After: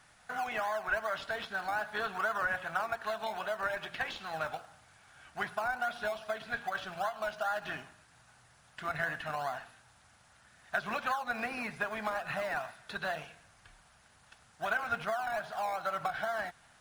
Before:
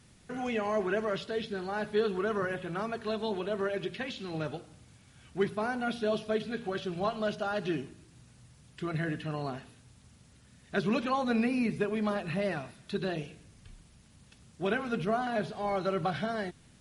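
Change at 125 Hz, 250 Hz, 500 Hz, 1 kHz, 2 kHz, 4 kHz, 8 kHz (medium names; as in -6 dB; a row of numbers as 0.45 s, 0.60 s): -13.0 dB, -16.0 dB, -6.5 dB, +1.5 dB, +4.0 dB, -2.5 dB, +1.0 dB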